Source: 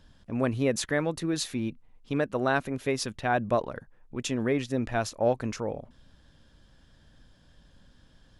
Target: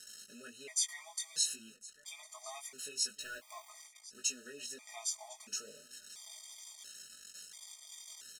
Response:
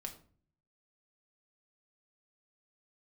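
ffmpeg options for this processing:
-filter_complex "[0:a]aeval=exprs='val(0)+0.5*0.0119*sgn(val(0))':c=same,aecho=1:1:4.7:0.63,acompressor=threshold=-27dB:ratio=2,bandpass=f=7.4k:t=q:w=1.8:csg=0,asettb=1/sr,asplit=3[a][b][c];[a]atrim=end=3.204[d];[b]atrim=start=3.2:end=3.69,asetpts=PTS-STARTPTS,afade=t=in:d=0.004:c=qsin,afade=t=out:st=0.486:d=0.004:c=qsin,aeval=exprs='val(0)*gte(abs(val(0)),0.00188)':c=same[e];[c]atrim=start=3.686[f];[d][e]acrossfade=d=0.004:c1=hsin:c2=qsin[g];[g][f]acrossfade=d=0.004:c1=qsin:c2=hsin,flanger=delay=18.5:depth=2.5:speed=1.2,asplit=2[h][i];[i]aecho=0:1:1056:0.1[j];[h][j]amix=inputs=2:normalize=0,afftfilt=real='re*gt(sin(2*PI*0.73*pts/sr)*(1-2*mod(floor(b*sr/1024/630),2)),0)':imag='im*gt(sin(2*PI*0.73*pts/sr)*(1-2*mod(floor(b*sr/1024/630),2)),0)':win_size=1024:overlap=0.75,volume=10.5dB"

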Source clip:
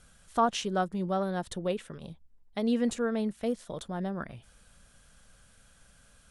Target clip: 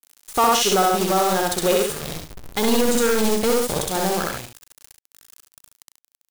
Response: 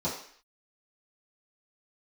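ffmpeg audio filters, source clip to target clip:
-filter_complex "[0:a]aeval=exprs='if(lt(val(0),0),0.708*val(0),val(0))':c=same,aecho=1:1:2.4:0.43,asoftclip=type=tanh:threshold=-25.5dB,asplit=3[a][b][c];[a]afade=t=out:st=1.75:d=0.02[d];[b]asubboost=boost=3:cutoff=210,afade=t=in:st=1.75:d=0.02,afade=t=out:st=3.89:d=0.02[e];[c]afade=t=in:st=3.89:d=0.02[f];[d][e][f]amix=inputs=3:normalize=0,acrusher=bits=7:mix=0:aa=0.000001,aeval=exprs='0.0794*(cos(1*acos(clip(val(0)/0.0794,-1,1)))-cos(1*PI/2))+0.0158*(cos(3*acos(clip(val(0)/0.0794,-1,1)))-cos(3*PI/2))+0.00141*(cos(7*acos(clip(val(0)/0.0794,-1,1)))-cos(7*PI/2))+0.00316*(cos(8*acos(clip(val(0)/0.0794,-1,1)))-cos(8*PI/2))':c=same,bass=f=250:g=-5,treble=f=4k:g=7,aecho=1:1:64.14|99.13|137:0.891|0.316|0.355,alimiter=level_in=29.5dB:limit=-1dB:release=50:level=0:latency=1,volume=-7.5dB"

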